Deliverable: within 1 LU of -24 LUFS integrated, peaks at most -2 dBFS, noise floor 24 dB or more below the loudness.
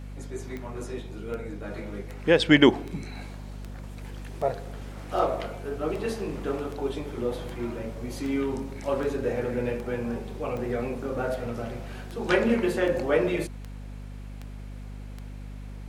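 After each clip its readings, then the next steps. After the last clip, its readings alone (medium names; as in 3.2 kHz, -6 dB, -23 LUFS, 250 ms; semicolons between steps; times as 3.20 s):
clicks found 20; hum 50 Hz; highest harmonic 250 Hz; hum level -36 dBFS; loudness -28.0 LUFS; peak level -4.0 dBFS; loudness target -24.0 LUFS
-> de-click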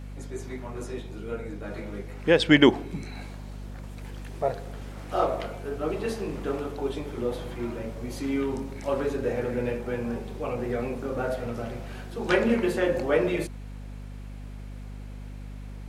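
clicks found 0; hum 50 Hz; highest harmonic 250 Hz; hum level -36 dBFS
-> de-hum 50 Hz, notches 5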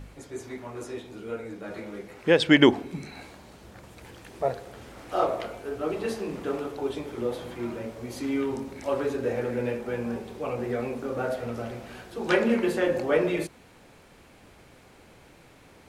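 hum not found; loudness -28.0 LUFS; peak level -4.5 dBFS; loudness target -24.0 LUFS
-> trim +4 dB; peak limiter -2 dBFS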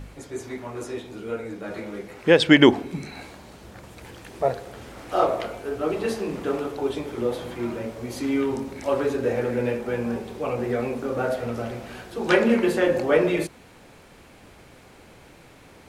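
loudness -24.5 LUFS; peak level -2.0 dBFS; noise floor -50 dBFS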